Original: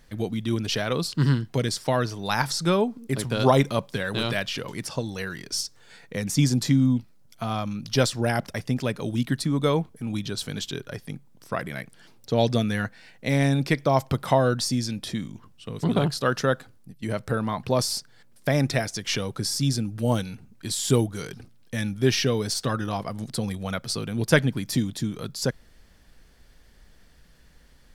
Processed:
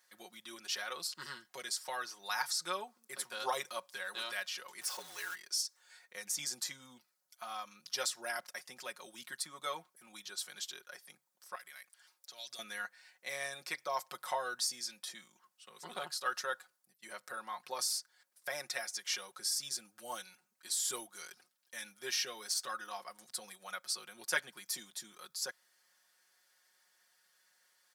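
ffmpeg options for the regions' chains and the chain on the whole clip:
ffmpeg -i in.wav -filter_complex "[0:a]asettb=1/sr,asplit=3[link_01][link_02][link_03];[link_01]atrim=end=4.814[link_04];[link_02]atrim=start=4.81:end=5.35,asetpts=PTS-STARTPTS,afade=type=in:duration=0.004:curve=qsin,afade=type=out:start_time=0.536:duration=0.004:curve=qsin,aeval=exprs='val(0)+0.5*0.0251*sgn(val(0))':channel_layout=same,afreqshift=-50[link_05];[link_03]atrim=start=5.346[link_06];[link_04][link_05]acrossfade=duration=0.004:curve1=hsin:curve2=qsin[link_07];[link_07][link_06]acrossfade=duration=0.004:curve1=qsin:curve2=hsin,asettb=1/sr,asplit=3[link_08][link_09][link_10];[link_08]atrim=end=11.554[link_11];[link_09]atrim=start=11.55:end=12.59,asetpts=PTS-STARTPTS,afade=type=in:duration=0.004:curve=qsin,afade=type=out:start_time=1.036:duration=0.004:curve=qsin,lowshelf=frequency=490:gain=-11,acrossover=split=130|3000[link_12][link_13][link_14];[link_13]acompressor=threshold=-41dB:ratio=3:attack=3.2:release=140:knee=2.83:detection=peak[link_15];[link_12][link_15][link_14]amix=inputs=3:normalize=0[link_16];[link_10]atrim=start=12.586[link_17];[link_11][link_16]acrossfade=duration=0.004:curve1=hsin:curve2=qsin[link_18];[link_18][link_17]acrossfade=duration=0.004:curve1=qsin:curve2=hsin,highpass=1300,equalizer=frequency=2800:width=0.86:gain=-8,aecho=1:1:5.5:0.76,volume=-5.5dB" out.wav

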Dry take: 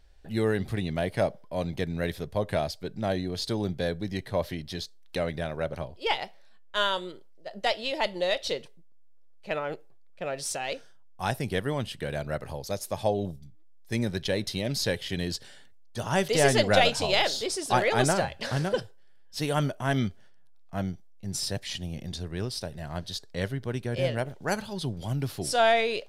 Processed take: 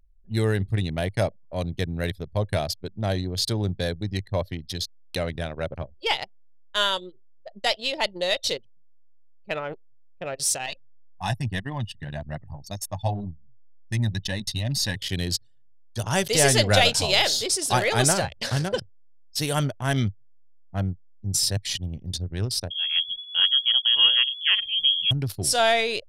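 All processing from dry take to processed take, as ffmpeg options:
ffmpeg -i in.wav -filter_complex "[0:a]asettb=1/sr,asplit=3[link_01][link_02][link_03];[link_01]atrim=end=10.664[link_04];[link_02]atrim=start=10.66:end=14.96,asetpts=PTS-STARTPTS,afade=type=in:duration=0.004:curve=qsin,afade=type=out:start_time=4.296:duration=0.004:curve=qsin,highshelf=frequency=9600:gain=-6.5,aecho=1:1:1.1:0.74,atrim=end_sample=189630,flanger=delay=3.7:depth=4.5:regen=-30:speed=1.9:shape=triangular[link_05];[link_03]atrim=start=14.956[link_06];[link_04][link_05]acrossfade=duration=0.004:curve1=hsin:curve2=qsin[link_07];[link_07][link_06]acrossfade=duration=0.004:curve1=qsin:curve2=hsin,asettb=1/sr,asplit=3[link_08][link_09][link_10];[link_08]atrim=end=22.704[link_11];[link_09]atrim=start=22.7:end=25.11,asetpts=PTS-STARTPTS,afade=type=in:duration=0.004:curve=qsin,afade=type=out:start_time=2.406:duration=0.004:curve=qsin,lowshelf=frequency=310:gain=7,lowpass=frequency=2900:width_type=q:width=0.5098,lowpass=frequency=2900:width_type=q:width=0.6013,lowpass=frequency=2900:width_type=q:width=0.9,lowpass=frequency=2900:width_type=q:width=2.563,afreqshift=-3400[link_12];[link_10]atrim=start=25.106[link_13];[link_11][link_12]acrossfade=duration=0.004:curve1=hsin:curve2=qsin[link_14];[link_14][link_13]acrossfade=duration=0.004:curve1=qsin:curve2=hsin,highshelf=frequency=3300:gain=11.5,anlmdn=15.8,equalizer=frequency=100:width_type=o:width=0.71:gain=9.5" out.wav

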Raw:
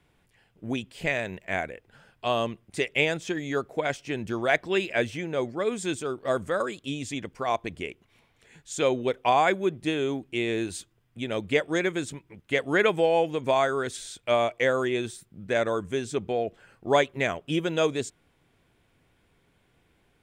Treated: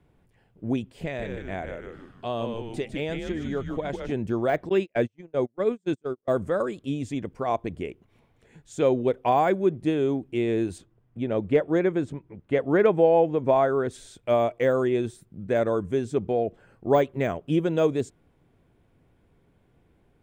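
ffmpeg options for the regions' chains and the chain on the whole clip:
ffmpeg -i in.wav -filter_complex "[0:a]asettb=1/sr,asplit=3[link_01][link_02][link_03];[link_01]atrim=end=1.034[link_04];[link_02]atrim=start=1.03:end=4.12,asetpts=PTS-STARTPTS,afade=type=in:duration=0.004:curve=qsin,afade=type=out:start_time=3.086:duration=0.004:curve=qsin,equalizer=frequency=3600:width=3.7:gain=7,asplit=6[link_05][link_06][link_07][link_08][link_09][link_10];[link_06]adelay=151,afreqshift=-120,volume=-7dB[link_11];[link_07]adelay=302,afreqshift=-240,volume=-14.7dB[link_12];[link_08]adelay=453,afreqshift=-360,volume=-22.5dB[link_13];[link_09]adelay=604,afreqshift=-480,volume=-30.2dB[link_14];[link_10]adelay=755,afreqshift=-600,volume=-38dB[link_15];[link_05][link_11][link_12][link_13][link_14][link_15]amix=inputs=6:normalize=0,atrim=end_sample=136269,acompressor=threshold=-35dB:ratio=1.5:attack=3.2:release=140:knee=1:detection=peak[link_16];[link_03]atrim=start=4.116[link_17];[link_04][link_16]acrossfade=duration=0.004:curve1=hsin:curve2=qsin[link_18];[link_18][link_17]acrossfade=duration=0.004:curve1=qsin:curve2=hsin,asettb=1/sr,asplit=3[link_19][link_20][link_21];[link_19]atrim=end=4.694[link_22];[link_20]atrim=start=4.69:end=6.28,asetpts=PTS-STARTPTS,afade=type=in:duration=0.004:curve=qsin,afade=type=out:start_time=1.586:duration=0.004:curve=qsin,lowpass=frequency=9300:width=0.5412,lowpass=frequency=9300:width=1.3066,agate=range=-38dB:threshold=-30dB:ratio=16:release=100:detection=peak[link_23];[link_21]atrim=start=6.276[link_24];[link_22][link_23]acrossfade=duration=0.004:curve1=hsin:curve2=qsin[link_25];[link_25][link_24]acrossfade=duration=0.004:curve1=qsin:curve2=hsin,asettb=1/sr,asplit=3[link_26][link_27][link_28];[link_26]atrim=end=10.784[link_29];[link_27]atrim=start=10.78:end=13.91,asetpts=PTS-STARTPTS,afade=type=in:duration=0.004:curve=qsin,afade=type=out:start_time=3.126:duration=0.004:curve=qsin,lowpass=frequency=2700:poles=1,equalizer=frequency=780:width_type=o:width=2.1:gain=2[link_30];[link_28]atrim=start=13.906[link_31];[link_29][link_30]acrossfade=duration=0.004:curve1=hsin:curve2=qsin[link_32];[link_32][link_31]acrossfade=duration=0.004:curve1=qsin:curve2=hsin,tiltshelf=frequency=1300:gain=8,deesser=0.9,highshelf=frequency=6800:gain=4.5,volume=-3dB" out.wav

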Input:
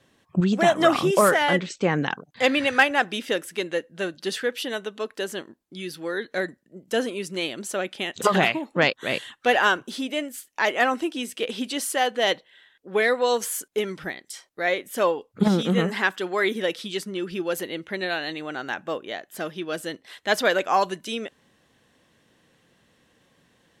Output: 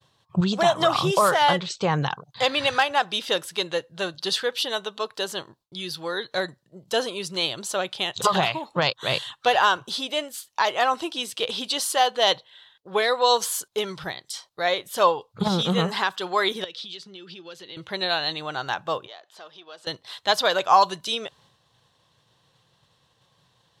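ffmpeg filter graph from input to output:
ffmpeg -i in.wav -filter_complex "[0:a]asettb=1/sr,asplit=3[link_01][link_02][link_03];[link_01]atrim=end=16.644[link_04];[link_02]atrim=start=16.64:end=17.77,asetpts=PTS-STARTPTS,afade=type=in:duration=0.004:curve=qsin,afade=type=out:start_time=1.126:duration=0.004:curve=qsin,equalizer=frequency=820:width_type=o:width=1.5:gain=-14,acompressor=threshold=-36dB:ratio=6:attack=3.2:release=140:knee=1:detection=peak,highpass=230,lowpass=4700[link_05];[link_03]atrim=start=17.766[link_06];[link_04][link_05]acrossfade=duration=0.004:curve1=hsin:curve2=qsin[link_07];[link_07][link_06]acrossfade=duration=0.004:curve1=qsin:curve2=hsin,asettb=1/sr,asplit=3[link_08][link_09][link_10];[link_08]atrim=end=19.064[link_11];[link_09]atrim=start=19.06:end=19.87,asetpts=PTS-STARTPTS,afade=type=in:duration=0.004:curve=qsin,afade=type=out:start_time=0.806:duration=0.004:curve=qsin,aeval=exprs='if(lt(val(0),0),0.708*val(0),val(0))':channel_layout=same,acompressor=threshold=-46dB:ratio=2.5:attack=3.2:release=140:knee=1:detection=peak,highpass=380,lowpass=5800[link_12];[link_10]atrim=start=19.866[link_13];[link_11][link_12]acrossfade=duration=0.004:curve1=hsin:curve2=qsin[link_14];[link_14][link_13]acrossfade=duration=0.004:curve1=qsin:curve2=hsin,alimiter=limit=-11.5dB:level=0:latency=1:release=237,equalizer=frequency=125:width_type=o:width=1:gain=11,equalizer=frequency=250:width_type=o:width=1:gain=-11,equalizer=frequency=1000:width_type=o:width=1:gain=9,equalizer=frequency=2000:width_type=o:width=1:gain=-7,equalizer=frequency=4000:width_type=o:width=1:gain=11,agate=range=-33dB:threshold=-54dB:ratio=3:detection=peak" out.wav

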